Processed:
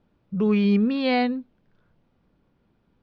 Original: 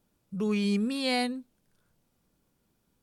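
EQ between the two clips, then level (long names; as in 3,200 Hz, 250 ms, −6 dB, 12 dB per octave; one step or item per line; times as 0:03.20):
low-pass filter 7,100 Hz 24 dB per octave
high-frequency loss of the air 320 metres
+8.0 dB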